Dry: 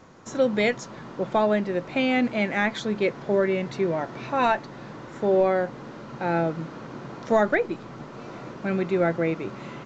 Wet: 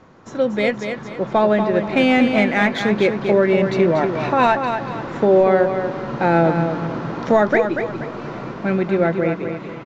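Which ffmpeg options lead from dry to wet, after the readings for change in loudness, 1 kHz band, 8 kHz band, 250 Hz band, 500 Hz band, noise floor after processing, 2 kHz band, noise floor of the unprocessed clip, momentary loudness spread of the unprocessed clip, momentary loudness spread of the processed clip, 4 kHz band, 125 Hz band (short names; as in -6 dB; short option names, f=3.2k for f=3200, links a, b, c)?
+7.0 dB, +7.5 dB, n/a, +8.0 dB, +7.0 dB, -33 dBFS, +6.5 dB, -42 dBFS, 17 LU, 11 LU, +6.0 dB, +8.5 dB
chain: -filter_complex "[0:a]dynaudnorm=f=310:g=11:m=10dB,alimiter=limit=-8.5dB:level=0:latency=1:release=401,adynamicsmooth=sensitivity=1:basefreq=5.1k,asplit=2[a][b];[b]aecho=0:1:238|476|714|952:0.447|0.156|0.0547|0.0192[c];[a][c]amix=inputs=2:normalize=0,volume=2.5dB"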